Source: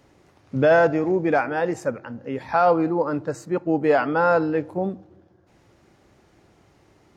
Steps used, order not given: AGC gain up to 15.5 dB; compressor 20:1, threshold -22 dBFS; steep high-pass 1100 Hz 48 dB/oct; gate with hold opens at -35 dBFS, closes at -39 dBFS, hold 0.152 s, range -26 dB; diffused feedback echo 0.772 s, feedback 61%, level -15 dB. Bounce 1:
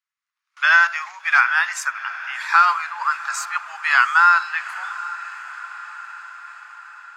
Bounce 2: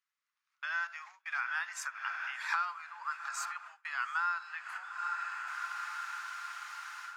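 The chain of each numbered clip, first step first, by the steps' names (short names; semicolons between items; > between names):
steep high-pass > compressor > AGC > gate with hold > diffused feedback echo; AGC > diffused feedback echo > compressor > steep high-pass > gate with hold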